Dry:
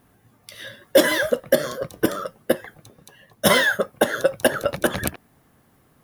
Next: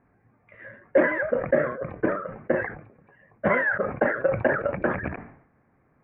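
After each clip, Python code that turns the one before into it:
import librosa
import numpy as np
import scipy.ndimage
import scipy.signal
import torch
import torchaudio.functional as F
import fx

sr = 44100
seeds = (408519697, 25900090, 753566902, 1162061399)

y = scipy.signal.sosfilt(scipy.signal.cheby1(6, 1.0, 2400.0, 'lowpass', fs=sr, output='sos'), x)
y = fx.sustainer(y, sr, db_per_s=87.0)
y = F.gain(torch.from_numpy(y), -4.5).numpy()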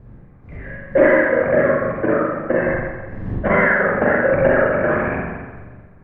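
y = fx.dmg_wind(x, sr, seeds[0], corner_hz=150.0, level_db=-42.0)
y = fx.rev_spring(y, sr, rt60_s=1.3, pass_ms=(41, 59), chirp_ms=25, drr_db=-4.5)
y = F.gain(torch.from_numpy(y), 2.5).numpy()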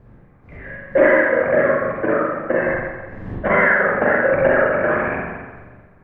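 y = fx.low_shelf(x, sr, hz=320.0, db=-7.5)
y = F.gain(torch.from_numpy(y), 1.5).numpy()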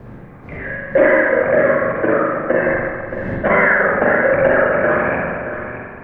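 y = x + 10.0 ** (-15.0 / 20.0) * np.pad(x, (int(624 * sr / 1000.0), 0))[:len(x)]
y = fx.band_squash(y, sr, depth_pct=40)
y = F.gain(torch.from_numpy(y), 2.0).numpy()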